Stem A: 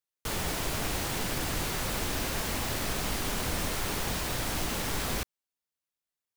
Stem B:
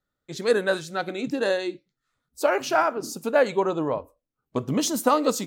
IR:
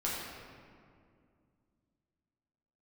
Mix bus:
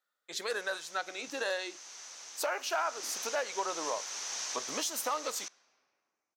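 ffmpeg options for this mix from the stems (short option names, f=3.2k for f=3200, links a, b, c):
-filter_complex "[0:a]lowpass=f=6.1k:t=q:w=7.2,adelay=250,volume=-8.5dB,afade=t=in:st=2.65:d=0.4:silence=0.298538,asplit=2[a][b];[b]volume=-23.5dB[c];[1:a]asoftclip=type=hard:threshold=-13.5dB,volume=1dB[d];[2:a]atrim=start_sample=2205[e];[c][e]afir=irnorm=-1:irlink=0[f];[a][d][f]amix=inputs=3:normalize=0,highpass=780,alimiter=limit=-22.5dB:level=0:latency=1:release=470"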